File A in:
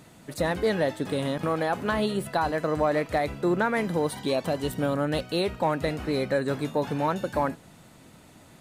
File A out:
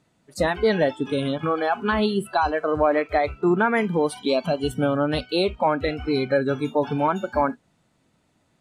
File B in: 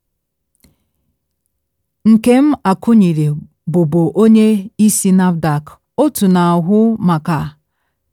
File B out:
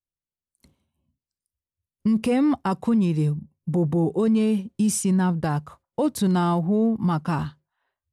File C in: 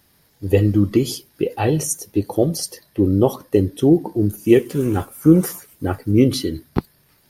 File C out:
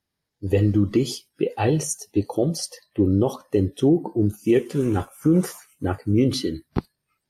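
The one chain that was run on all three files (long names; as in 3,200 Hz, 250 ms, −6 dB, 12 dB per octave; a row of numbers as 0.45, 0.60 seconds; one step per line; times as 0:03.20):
low-pass filter 8,800 Hz 12 dB per octave
noise reduction from a noise print of the clip's start 19 dB
brickwall limiter −7 dBFS
loudness normalisation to −23 LKFS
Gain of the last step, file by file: +5.0, −7.5, −2.0 decibels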